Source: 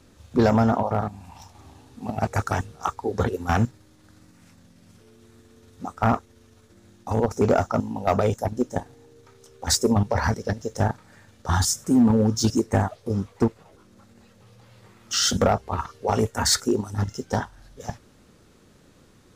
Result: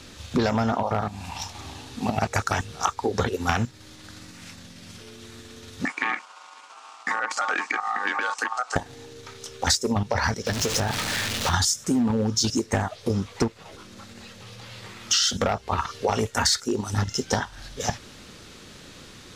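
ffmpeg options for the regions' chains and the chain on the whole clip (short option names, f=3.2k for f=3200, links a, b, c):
-filter_complex "[0:a]asettb=1/sr,asplit=3[a][b][c];[a]atrim=end=5.854[d];[b]atrim=start=5.85:end=8.76,asetpts=PTS-STARTPTS,afade=t=in:d=0.004:c=qsin,afade=t=out:st=2.906:d=0.004:c=qsin,acompressor=threshold=-28dB:ratio=6:attack=3.2:release=140:knee=1:detection=peak,aeval=exprs='val(0)*sin(2*PI*1000*n/s)':c=same,highpass=f=250:w=0.5412,highpass=f=250:w=1.3066,equalizer=f=380:t=q:w=4:g=-6,equalizer=f=600:t=q:w=4:g=-7,equalizer=f=4.7k:t=q:w=4:g=-3,lowpass=f=9.3k:w=0.5412,lowpass=f=9.3k:w=1.3066[e];[c]atrim=start=8.756[f];[d][e]acrossfade=d=0.004:c1=hsin:c2=qsin[g];[g][f]acrossfade=d=0.004:c1=qsin:c2=hsin,asettb=1/sr,asplit=3[h][i][j];[h]atrim=end=10.464[k];[i]atrim=start=10.46:end=11.54,asetpts=PTS-STARTPTS,afade=t=in:d=0.004:c=qsin,afade=t=out:st=1.076:d=0.004:c=qsin,aeval=exprs='val(0)+0.5*0.0473*sgn(val(0))':c=same,agate=range=-33dB:threshold=-28dB:ratio=3:release=100:detection=peak,acompressor=threshold=-30dB:ratio=2.5:attack=3.2:release=140:knee=1:detection=peak[l];[j]atrim=start=11.536[m];[k][l]acrossfade=d=0.004:c1=hsin:c2=qsin[n];[n][m]acrossfade=d=0.004:c1=qsin:c2=hsin,equalizer=f=3.6k:t=o:w=2.5:g=11,acompressor=threshold=-28dB:ratio=6,volume=7dB"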